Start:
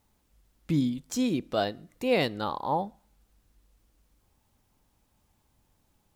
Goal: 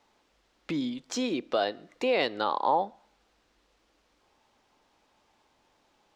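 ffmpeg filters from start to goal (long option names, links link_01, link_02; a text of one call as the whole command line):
ffmpeg -i in.wav -filter_complex "[0:a]alimiter=limit=-23.5dB:level=0:latency=1:release=300,acrossover=split=300 6000:gain=0.1 1 0.0631[link_01][link_02][link_03];[link_01][link_02][link_03]amix=inputs=3:normalize=0,volume=8.5dB" out.wav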